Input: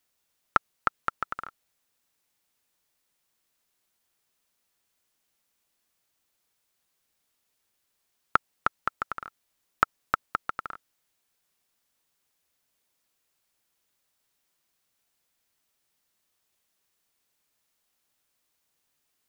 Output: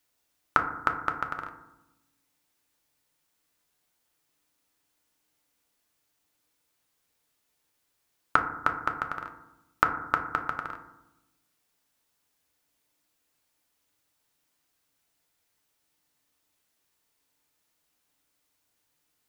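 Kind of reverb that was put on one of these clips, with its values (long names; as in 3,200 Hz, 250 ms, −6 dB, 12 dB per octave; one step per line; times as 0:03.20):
feedback delay network reverb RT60 0.9 s, low-frequency decay 1.45×, high-frequency decay 0.3×, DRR 3.5 dB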